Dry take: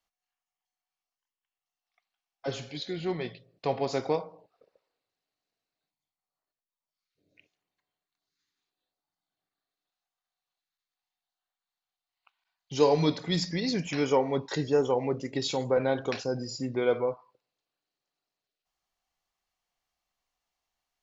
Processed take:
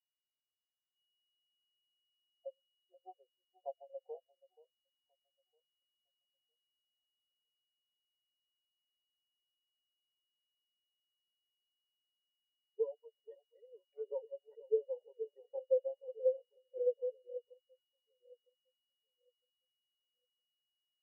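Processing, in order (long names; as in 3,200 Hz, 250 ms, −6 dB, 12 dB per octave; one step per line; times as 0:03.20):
adaptive Wiener filter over 41 samples
Butterworth high-pass 520 Hz 36 dB per octave
treble cut that deepens with the level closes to 1,400 Hz, closed at −33.5 dBFS
parametric band 3,800 Hz −9.5 dB 1.6 octaves
downward compressor 20 to 1, threshold −39 dBFS, peak gain reduction 17 dB
steady tone 2,900 Hz −56 dBFS
on a send: delay that swaps between a low-pass and a high-pass 479 ms, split 1,000 Hz, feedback 79%, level −4.5 dB
on the sum: every bin expanded away from the loudest bin 4 to 1
level +6.5 dB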